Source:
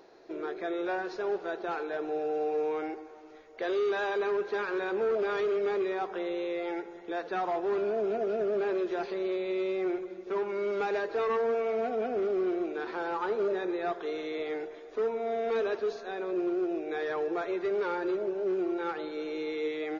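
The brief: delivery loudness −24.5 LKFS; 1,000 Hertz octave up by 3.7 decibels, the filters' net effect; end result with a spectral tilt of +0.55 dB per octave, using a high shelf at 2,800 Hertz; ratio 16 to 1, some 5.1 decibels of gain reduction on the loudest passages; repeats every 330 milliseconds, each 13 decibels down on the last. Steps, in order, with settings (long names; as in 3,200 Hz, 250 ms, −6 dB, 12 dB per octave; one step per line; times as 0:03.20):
parametric band 1,000 Hz +6 dB
high-shelf EQ 2,800 Hz −4.5 dB
downward compressor 16 to 1, threshold −30 dBFS
repeating echo 330 ms, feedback 22%, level −13 dB
level +9.5 dB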